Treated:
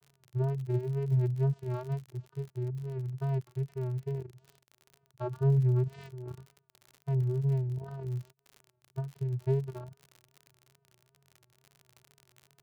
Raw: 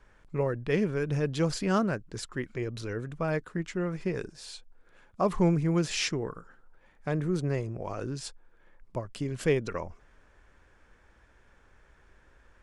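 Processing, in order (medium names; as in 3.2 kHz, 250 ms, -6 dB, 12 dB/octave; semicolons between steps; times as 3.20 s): median filter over 25 samples; 5.82–6.30 s: compressor with a negative ratio -37 dBFS, ratio -1; vocoder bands 8, square 131 Hz; wow and flutter 94 cents; crackle 57 per s -41 dBFS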